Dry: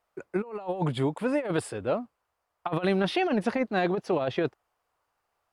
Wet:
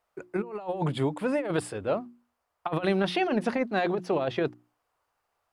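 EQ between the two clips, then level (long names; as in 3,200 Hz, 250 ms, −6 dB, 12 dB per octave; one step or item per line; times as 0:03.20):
mains-hum notches 60/120/180/240/300/360 Hz
0.0 dB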